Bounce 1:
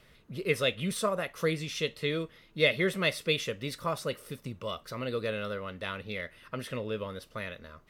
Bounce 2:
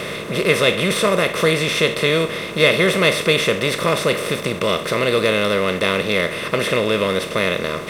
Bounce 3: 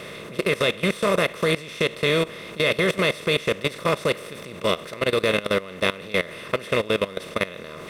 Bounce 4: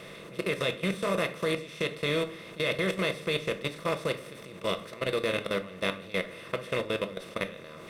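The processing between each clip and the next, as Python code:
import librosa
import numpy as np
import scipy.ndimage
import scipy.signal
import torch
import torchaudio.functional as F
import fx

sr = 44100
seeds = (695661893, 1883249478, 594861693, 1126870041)

y1 = fx.bin_compress(x, sr, power=0.4)
y1 = y1 * 10.0 ** (7.5 / 20.0)
y2 = fx.level_steps(y1, sr, step_db=18)
y2 = y2 * 10.0 ** (-1.5 / 20.0)
y3 = fx.room_shoebox(y2, sr, seeds[0], volume_m3=330.0, walls='furnished', distance_m=0.71)
y3 = y3 * 10.0 ** (-8.5 / 20.0)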